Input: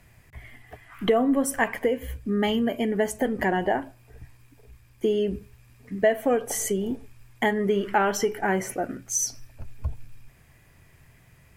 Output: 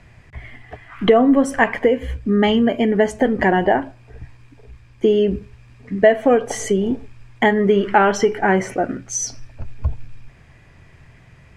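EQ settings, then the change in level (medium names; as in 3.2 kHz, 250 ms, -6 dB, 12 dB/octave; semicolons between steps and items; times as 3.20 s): distance through air 100 m; +8.5 dB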